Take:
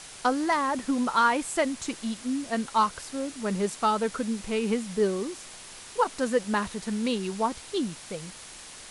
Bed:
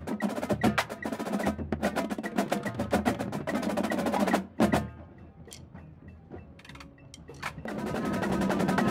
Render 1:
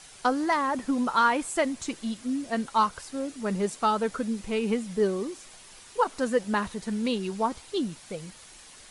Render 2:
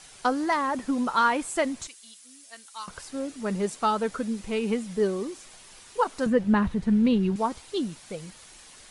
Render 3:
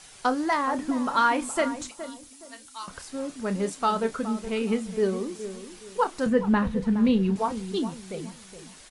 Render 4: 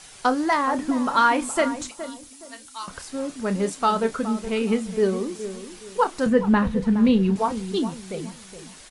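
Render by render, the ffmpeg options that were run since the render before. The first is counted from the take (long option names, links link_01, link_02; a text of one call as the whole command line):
ffmpeg -i in.wav -af "afftdn=noise_reduction=7:noise_floor=-45" out.wav
ffmpeg -i in.wav -filter_complex "[0:a]asettb=1/sr,asplit=3[link_01][link_02][link_03];[link_01]atrim=end=1.874[link_04];[link_02]atrim=start=1.87:end=2.88,asetpts=PTS-STARTPTS,afade=type=in:duration=0.004:curve=qsin,afade=type=out:start_time=1.006:duration=0.004:curve=qsin,aderivative[link_05];[link_03]atrim=start=2.876[link_06];[link_04][link_05]acrossfade=duration=0.004:curve1=hsin:curve2=qsin[link_07];[link_07][link_06]acrossfade=duration=0.004:curve1=qsin:curve2=hsin,asettb=1/sr,asplit=3[link_08][link_09][link_10];[link_08]atrim=end=6.264[link_11];[link_09]atrim=start=6.26:end=7.36,asetpts=PTS-STARTPTS,afade=type=in:duration=0.004:curve=qsin,afade=type=out:start_time=1.096:duration=0.004:curve=qsin,bass=frequency=250:gain=14,treble=frequency=4000:gain=-12[link_12];[link_10]atrim=start=7.356[link_13];[link_11][link_12]acrossfade=duration=0.004:curve1=hsin:curve2=qsin[link_14];[link_14][link_13]acrossfade=duration=0.004:curve1=qsin:curve2=hsin" out.wav
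ffmpeg -i in.wav -filter_complex "[0:a]asplit=2[link_01][link_02];[link_02]adelay=31,volume=-12dB[link_03];[link_01][link_03]amix=inputs=2:normalize=0,asplit=2[link_04][link_05];[link_05]adelay=418,lowpass=frequency=1100:poles=1,volume=-11dB,asplit=2[link_06][link_07];[link_07]adelay=418,lowpass=frequency=1100:poles=1,volume=0.32,asplit=2[link_08][link_09];[link_09]adelay=418,lowpass=frequency=1100:poles=1,volume=0.32[link_10];[link_04][link_06][link_08][link_10]amix=inputs=4:normalize=0" out.wav
ffmpeg -i in.wav -af "volume=3.5dB" out.wav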